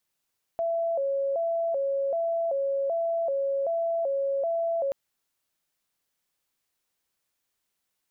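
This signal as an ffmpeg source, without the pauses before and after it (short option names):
-f lavfi -i "aevalsrc='0.0631*sin(2*PI*(610*t+59/1.3*(0.5-abs(mod(1.3*t,1)-0.5))))':d=4.33:s=44100"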